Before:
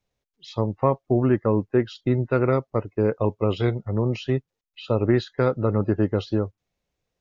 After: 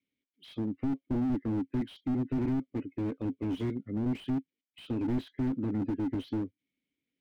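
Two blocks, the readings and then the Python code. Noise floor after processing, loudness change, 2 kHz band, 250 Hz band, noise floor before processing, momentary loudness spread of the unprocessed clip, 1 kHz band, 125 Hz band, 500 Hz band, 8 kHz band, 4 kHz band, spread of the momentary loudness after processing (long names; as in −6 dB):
below −85 dBFS, −9.5 dB, −15.5 dB, −5.0 dB, −84 dBFS, 6 LU, −15.5 dB, −12.5 dB, −18.0 dB, can't be measured, −11.0 dB, 6 LU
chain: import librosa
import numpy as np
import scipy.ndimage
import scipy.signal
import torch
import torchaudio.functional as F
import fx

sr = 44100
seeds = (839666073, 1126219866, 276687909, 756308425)

y = fx.vowel_filter(x, sr, vowel='i')
y = fx.slew_limit(y, sr, full_power_hz=4.3)
y = F.gain(torch.from_numpy(y), 8.0).numpy()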